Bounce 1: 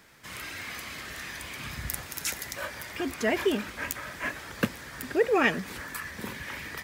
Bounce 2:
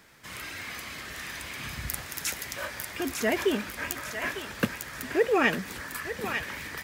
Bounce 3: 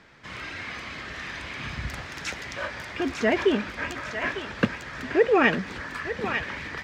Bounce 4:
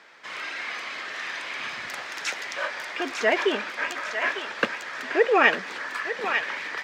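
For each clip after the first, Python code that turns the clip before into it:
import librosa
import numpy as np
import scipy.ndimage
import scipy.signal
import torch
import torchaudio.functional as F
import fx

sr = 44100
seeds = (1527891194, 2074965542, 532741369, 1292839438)

y1 = fx.echo_thinned(x, sr, ms=900, feedback_pct=39, hz=1100.0, wet_db=-5)
y2 = fx.air_absorb(y1, sr, metres=150.0)
y2 = y2 * 10.0 ** (4.5 / 20.0)
y3 = scipy.signal.sosfilt(scipy.signal.butter(2, 510.0, 'highpass', fs=sr, output='sos'), y2)
y3 = y3 * 10.0 ** (3.5 / 20.0)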